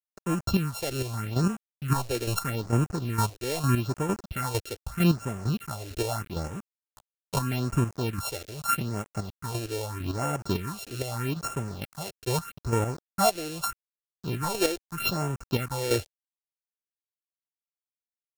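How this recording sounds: a buzz of ramps at a fixed pitch in blocks of 32 samples; chopped level 2.2 Hz, depth 60%, duty 25%; a quantiser's noise floor 8-bit, dither none; phasing stages 4, 0.8 Hz, lowest notch 170–4200 Hz

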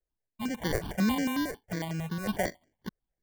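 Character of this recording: random-step tremolo, depth 55%; aliases and images of a low sample rate 1.3 kHz, jitter 0%; notches that jump at a steady rate 11 Hz 880–3700 Hz

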